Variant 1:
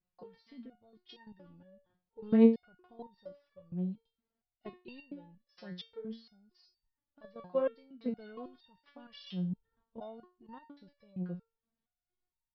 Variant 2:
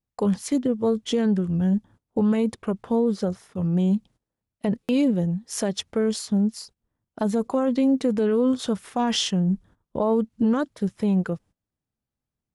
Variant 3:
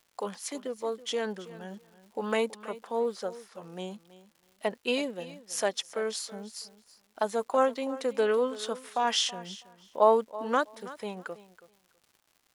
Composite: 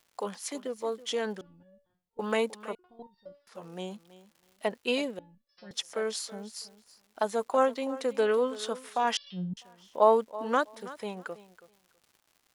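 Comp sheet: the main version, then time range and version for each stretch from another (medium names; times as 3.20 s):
3
1.41–2.19 s: from 1
2.75–3.47 s: from 1
5.19–5.71 s: from 1
9.17–9.57 s: from 1
not used: 2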